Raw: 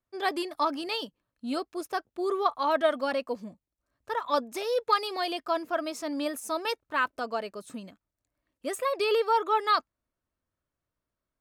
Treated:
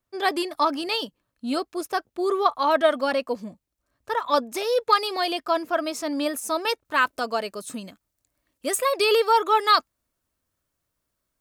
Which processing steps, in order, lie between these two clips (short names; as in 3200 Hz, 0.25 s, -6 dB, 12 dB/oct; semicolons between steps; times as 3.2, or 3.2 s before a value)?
high shelf 4000 Hz +2.5 dB, from 6.85 s +9.5 dB; gain +5 dB